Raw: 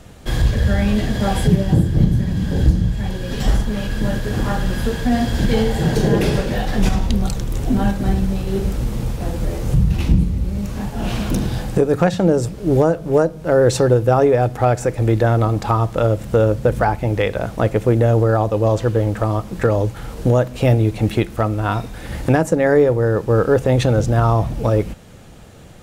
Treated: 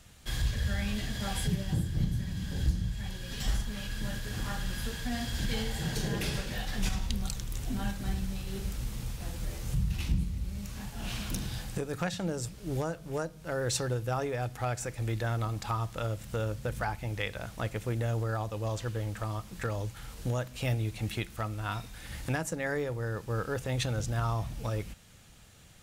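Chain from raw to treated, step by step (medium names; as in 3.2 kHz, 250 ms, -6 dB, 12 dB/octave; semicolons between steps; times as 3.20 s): amplifier tone stack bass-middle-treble 5-5-5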